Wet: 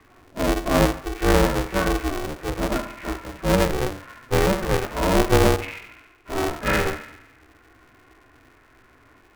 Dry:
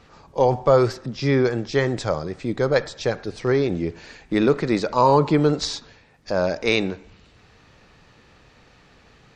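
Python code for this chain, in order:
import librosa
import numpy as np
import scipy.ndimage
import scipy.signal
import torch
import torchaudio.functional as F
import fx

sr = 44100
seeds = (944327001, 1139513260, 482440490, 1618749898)

y = fx.partial_stretch(x, sr, pct=82)
y = fx.highpass(y, sr, hz=76.0, slope=6)
y = fx.low_shelf(y, sr, hz=340.0, db=9.5)
y = fx.hum_notches(y, sr, base_hz=50, count=3)
y = fx.hpss(y, sr, part='percussive', gain_db=-12)
y = scipy.signal.sosfilt(scipy.signal.ellip(4, 1.0, 40, 2400.0, 'lowpass', fs=sr, output='sos'), y)
y = fx.tilt_shelf(y, sr, db=-4.5, hz=1400.0)
y = fx.fixed_phaser(y, sr, hz=1500.0, stages=4)
y = fx.echo_thinned(y, sr, ms=71, feedback_pct=66, hz=580.0, wet_db=-7)
y = y * np.sign(np.sin(2.0 * np.pi * 190.0 * np.arange(len(y)) / sr))
y = y * librosa.db_to_amplitude(6.0)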